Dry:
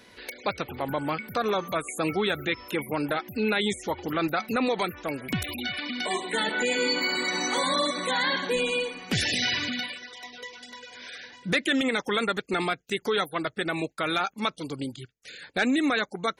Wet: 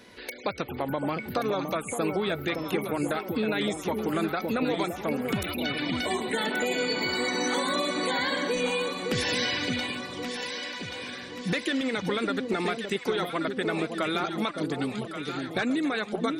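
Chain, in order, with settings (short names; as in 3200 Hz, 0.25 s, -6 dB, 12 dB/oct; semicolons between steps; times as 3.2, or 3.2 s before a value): bell 290 Hz +3.5 dB 2.5 oct; compressor, threshold -25 dBFS, peak gain reduction 7.5 dB; echo with dull and thin repeats by turns 0.565 s, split 810 Hz, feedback 71%, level -4.5 dB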